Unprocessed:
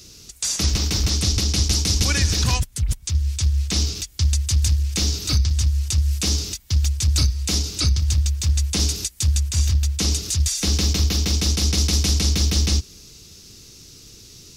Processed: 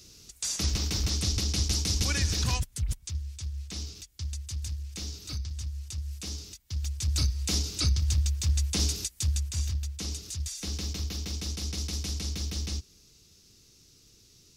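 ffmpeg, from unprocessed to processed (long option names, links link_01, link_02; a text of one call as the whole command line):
ffmpeg -i in.wav -af "volume=1.5dB,afade=type=out:start_time=2.86:duration=0.42:silence=0.398107,afade=type=in:start_time=6.64:duration=0.78:silence=0.334965,afade=type=out:start_time=8.94:duration=0.99:silence=0.421697" out.wav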